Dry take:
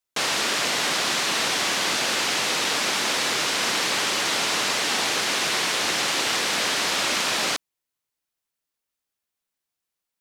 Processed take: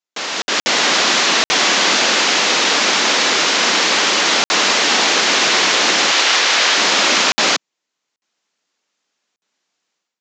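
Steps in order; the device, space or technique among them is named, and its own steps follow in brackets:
call with lost packets (high-pass filter 180 Hz 24 dB per octave; downsampling to 16,000 Hz; automatic gain control gain up to 16.5 dB; dropped packets of 60 ms random)
0:06.11–0:06.76: meter weighting curve A
level −1 dB

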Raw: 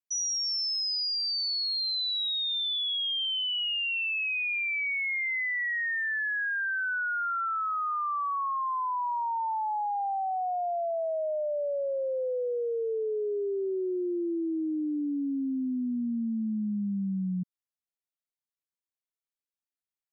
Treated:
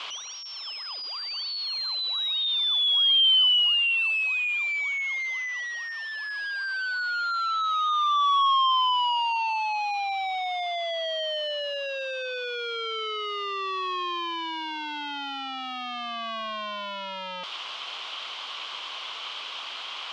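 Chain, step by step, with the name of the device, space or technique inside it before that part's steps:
0:01.91–0:02.35: Chebyshev high-pass filter 220 Hz, order 2
home computer beeper (sign of each sample alone; loudspeaker in its box 730–4,000 Hz, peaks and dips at 1,100 Hz +8 dB, 1,800 Hz −8 dB, 3,100 Hz +10 dB)
level +3.5 dB

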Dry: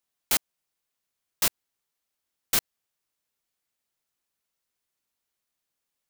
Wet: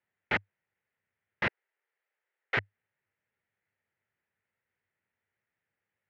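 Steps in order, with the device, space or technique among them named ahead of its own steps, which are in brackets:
bass cabinet (loudspeaker in its box 82–2,200 Hz, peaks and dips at 100 Hz +10 dB, 290 Hz −8 dB, 690 Hz −5 dB, 1,100 Hz −9 dB, 1,900 Hz +6 dB)
0:01.47–0:02.57: Butterworth high-pass 370 Hz
level +5 dB

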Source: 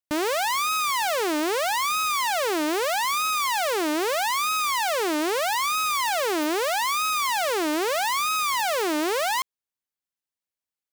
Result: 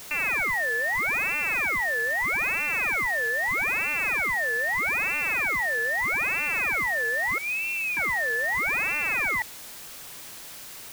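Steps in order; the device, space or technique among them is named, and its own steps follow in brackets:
0:07.38–0:07.97: Butterworth low-pass 620 Hz
scrambled radio voice (band-pass filter 340–2,700 Hz; voice inversion scrambler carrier 3,000 Hz; white noise bed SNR 15 dB)

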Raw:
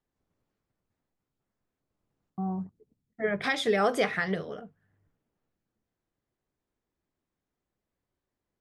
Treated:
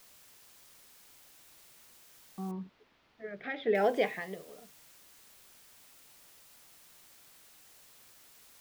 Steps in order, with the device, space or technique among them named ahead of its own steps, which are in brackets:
shortwave radio (band-pass filter 250–2,900 Hz; amplitude tremolo 0.78 Hz, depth 75%; auto-filter notch saw up 0.42 Hz 640–1,800 Hz; white noise bed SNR 19 dB)
0:02.51–0:03.75: high-frequency loss of the air 310 metres

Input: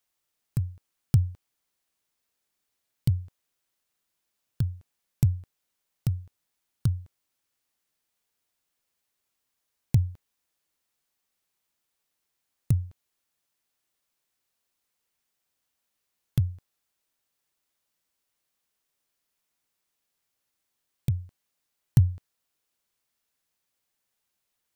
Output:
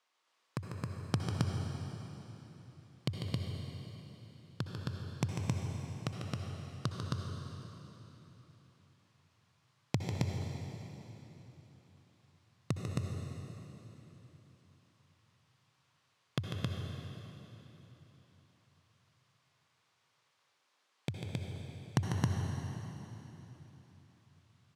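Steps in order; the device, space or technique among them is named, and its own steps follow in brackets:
station announcement (band-pass filter 360–4,600 Hz; parametric band 1,100 Hz +6.5 dB 0.46 octaves; loudspeakers that aren't time-aligned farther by 50 metres −7 dB, 92 metres −2 dB; convolution reverb RT60 3.6 s, pre-delay 58 ms, DRR 2 dB)
level +5.5 dB

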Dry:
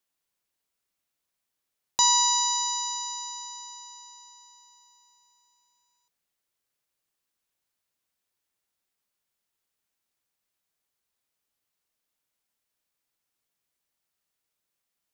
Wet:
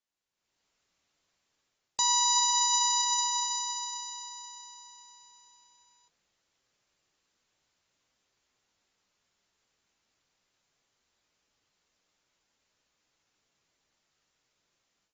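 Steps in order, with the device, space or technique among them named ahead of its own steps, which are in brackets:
low-bitrate web radio (automatic gain control gain up to 14.5 dB; brickwall limiter −10.5 dBFS, peak gain reduction 9 dB; level −6.5 dB; AAC 24 kbit/s 32,000 Hz)

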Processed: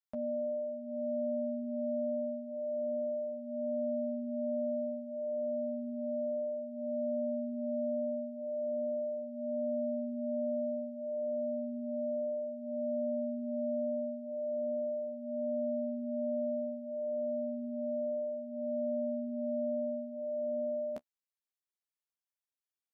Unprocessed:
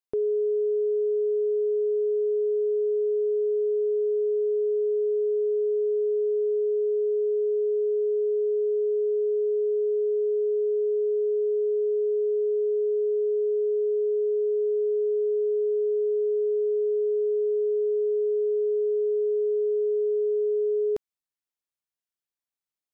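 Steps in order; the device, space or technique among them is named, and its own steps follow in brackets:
alien voice (ring modulation 180 Hz; flanger 0.17 Hz, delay 9.1 ms, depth 6.1 ms, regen −19%)
low-shelf EQ 390 Hz −9.5 dB

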